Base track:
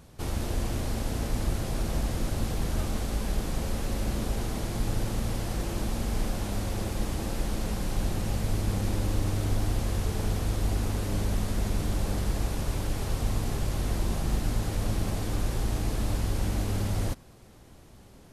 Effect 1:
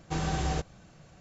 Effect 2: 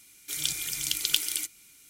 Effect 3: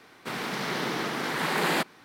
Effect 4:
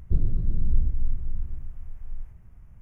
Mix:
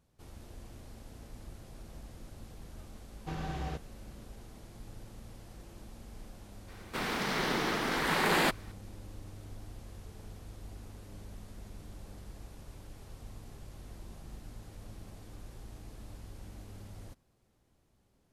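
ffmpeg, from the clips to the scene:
ffmpeg -i bed.wav -i cue0.wav -i cue1.wav -i cue2.wav -filter_complex "[0:a]volume=-19.5dB[link_01];[1:a]lowpass=3900,atrim=end=1.2,asetpts=PTS-STARTPTS,volume=-7.5dB,afade=type=in:duration=0.004:curve=hsin,afade=type=out:start_time=1.196:duration=0.004:curve=hsin,adelay=3160[link_02];[3:a]atrim=end=2.04,asetpts=PTS-STARTPTS,volume=-1.5dB,afade=type=in:duration=0.004:curve=hsin,afade=type=out:start_time=2.036:duration=0.004:curve=hsin,adelay=6680[link_03];[link_01][link_02][link_03]amix=inputs=3:normalize=0" out.wav

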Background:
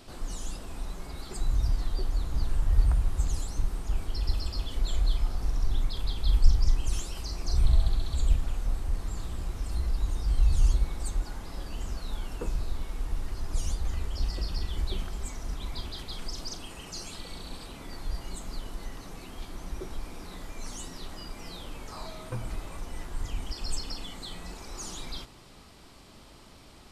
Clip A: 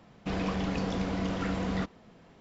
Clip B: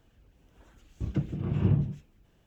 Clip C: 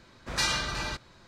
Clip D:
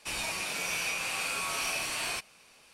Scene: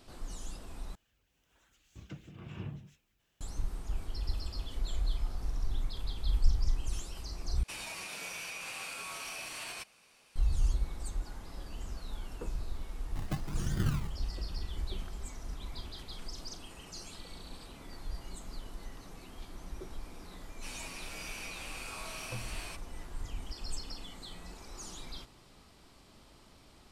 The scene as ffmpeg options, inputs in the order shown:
ffmpeg -i bed.wav -i cue0.wav -i cue1.wav -i cue2.wav -i cue3.wav -filter_complex "[2:a]asplit=2[link_01][link_02];[4:a]asplit=2[link_03][link_04];[0:a]volume=-6.5dB[link_05];[link_01]tiltshelf=frequency=970:gain=-8.5[link_06];[link_03]alimiter=level_in=3.5dB:limit=-24dB:level=0:latency=1:release=93,volume=-3.5dB[link_07];[link_02]acrusher=samples=37:mix=1:aa=0.000001:lfo=1:lforange=22.2:lforate=1.1[link_08];[link_05]asplit=3[link_09][link_10][link_11];[link_09]atrim=end=0.954[link_12];[link_06]atrim=end=2.46,asetpts=PTS-STARTPTS,volume=-9.5dB[link_13];[link_10]atrim=start=3.406:end=7.634[link_14];[link_07]atrim=end=2.73,asetpts=PTS-STARTPTS,volume=-5dB[link_15];[link_11]atrim=start=10.356[link_16];[link_08]atrim=end=2.46,asetpts=PTS-STARTPTS,volume=-7.5dB,afade=type=in:duration=0.004:curve=hsin,afade=type=out:start_time=2.456:duration=0.004:curve=hsin,adelay=12150[link_17];[link_04]atrim=end=2.73,asetpts=PTS-STARTPTS,volume=-11.5dB,afade=type=in:duration=0.1,afade=type=out:start_time=2.63:duration=0.1,adelay=20560[link_18];[link_12][link_13]acrossfade=duration=0.004:curve1=hsin:curve2=hsin[link_19];[link_19][link_14]acrossfade=duration=0.004:curve1=hsin:curve2=hsin[link_20];[link_20][link_15]acrossfade=duration=0.004:curve1=hsin:curve2=hsin[link_21];[link_21][link_16]acrossfade=duration=0.004:curve1=hsin:curve2=hsin[link_22];[link_22][link_17][link_18]amix=inputs=3:normalize=0" out.wav

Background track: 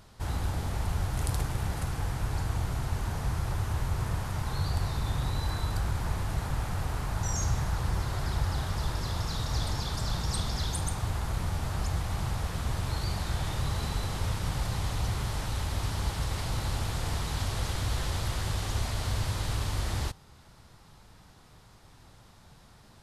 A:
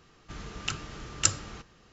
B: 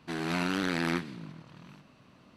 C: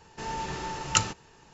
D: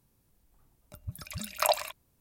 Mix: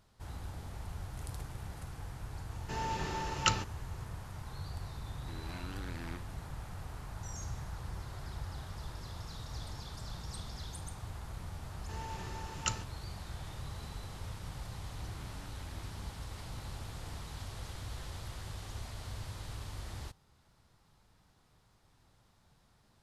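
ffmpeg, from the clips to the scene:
ffmpeg -i bed.wav -i cue0.wav -i cue1.wav -i cue2.wav -filter_complex "[3:a]asplit=2[link_01][link_02];[2:a]asplit=2[link_03][link_04];[0:a]volume=-12.5dB[link_05];[link_01]acrossover=split=6400[link_06][link_07];[link_07]acompressor=threshold=-55dB:ratio=4:attack=1:release=60[link_08];[link_06][link_08]amix=inputs=2:normalize=0[link_09];[link_04]acompressor=threshold=-52dB:ratio=6:attack=3.2:release=140:knee=1:detection=peak[link_10];[link_09]atrim=end=1.53,asetpts=PTS-STARTPTS,volume=-3dB,afade=type=in:duration=0.004:curve=hsin,afade=type=out:start_time=1.526:duration=0.004:curve=hsin,adelay=2510[link_11];[link_03]atrim=end=2.36,asetpts=PTS-STARTPTS,volume=-16.5dB,afade=type=in:duration=0.004:curve=hsin,afade=type=out:start_time=2.356:duration=0.004:curve=hsin,adelay=5190[link_12];[link_02]atrim=end=1.53,asetpts=PTS-STARTPTS,volume=-11dB,afade=type=in:duration=0.004:curve=hsin,afade=type=out:start_time=1.526:duration=0.004:curve=hsin,adelay=11710[link_13];[link_10]atrim=end=2.36,asetpts=PTS-STARTPTS,volume=-2.5dB,afade=type=in:duration=0.004:curve=hsin,afade=type=out:start_time=2.356:duration=0.004:curve=hsin,adelay=14910[link_14];[link_05][link_11][link_12][link_13][link_14]amix=inputs=5:normalize=0" out.wav

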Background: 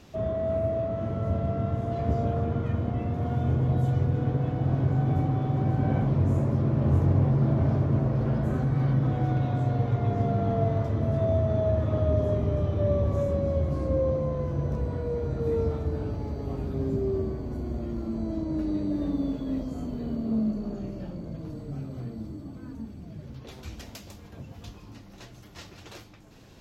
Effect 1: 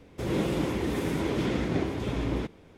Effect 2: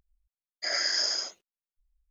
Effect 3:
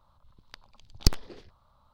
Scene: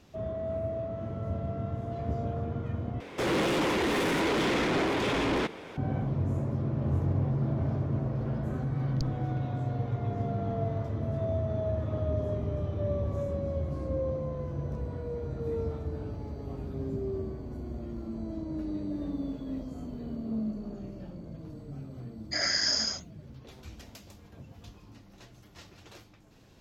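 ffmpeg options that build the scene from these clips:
ffmpeg -i bed.wav -i cue0.wav -i cue1.wav -i cue2.wav -filter_complex "[0:a]volume=-6dB[link_01];[1:a]asplit=2[link_02][link_03];[link_03]highpass=frequency=720:poles=1,volume=27dB,asoftclip=type=tanh:threshold=-15.5dB[link_04];[link_02][link_04]amix=inputs=2:normalize=0,lowpass=frequency=3700:poles=1,volume=-6dB[link_05];[3:a]afwtdn=0.0178[link_06];[link_01]asplit=2[link_07][link_08];[link_07]atrim=end=3.004[link_09];[link_05]atrim=end=2.77,asetpts=PTS-STARTPTS,volume=-4.5dB[link_10];[link_08]atrim=start=5.766[link_11];[link_06]atrim=end=1.93,asetpts=PTS-STARTPTS,volume=-15.5dB,afade=type=in:duration=0.004:curve=hsin,afade=type=out:start_time=1.926:duration=0.004:curve=hsin,adelay=350154S[link_12];[2:a]atrim=end=2.1,asetpts=PTS-STARTPTS,afade=type=in:duration=0.004:curve=hsin,afade=type=out:start_time=2.096:duration=0.004:curve=hsin,adelay=21690[link_13];[link_09][link_10]acrossfade=duration=0.004:curve1=hsin:curve2=hsin[link_14];[link_14][link_11]acrossfade=duration=0.004:curve1=hsin:curve2=hsin[link_15];[link_15][link_12][link_13]amix=inputs=3:normalize=0" out.wav

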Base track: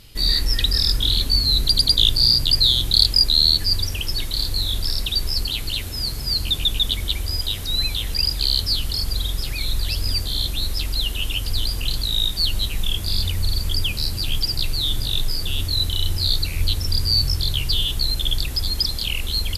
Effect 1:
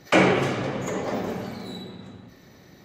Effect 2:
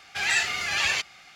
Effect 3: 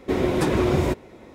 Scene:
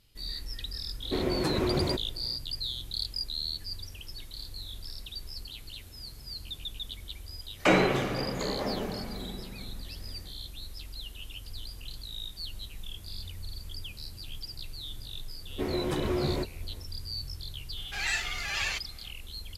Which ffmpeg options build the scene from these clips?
ffmpeg -i bed.wav -i cue0.wav -i cue1.wav -i cue2.wav -filter_complex "[3:a]asplit=2[link_01][link_02];[0:a]volume=-18.5dB[link_03];[link_02]asplit=2[link_04][link_05];[link_05]adelay=14,volume=-4.5dB[link_06];[link_04][link_06]amix=inputs=2:normalize=0[link_07];[link_01]atrim=end=1.34,asetpts=PTS-STARTPTS,volume=-7.5dB,afade=type=in:duration=0.004:curve=hsin,afade=type=out:start_time=1.336:duration=0.004:curve=hsin,adelay=1030[link_08];[1:a]atrim=end=2.84,asetpts=PTS-STARTPTS,volume=-4.5dB,afade=type=in:duration=0.1,afade=type=out:start_time=2.74:duration=0.1,adelay=7530[link_09];[link_07]atrim=end=1.34,asetpts=PTS-STARTPTS,volume=-11dB,afade=type=in:duration=0.004:curve=hsin,afade=type=out:start_time=1.336:duration=0.004:curve=hsin,adelay=15500[link_10];[2:a]atrim=end=1.35,asetpts=PTS-STARTPTS,volume=-7dB,afade=type=in:duration=0.004:curve=hsin,afade=type=out:start_time=1.346:duration=0.004:curve=hsin,adelay=17770[link_11];[link_03][link_08][link_09][link_10][link_11]amix=inputs=5:normalize=0" out.wav

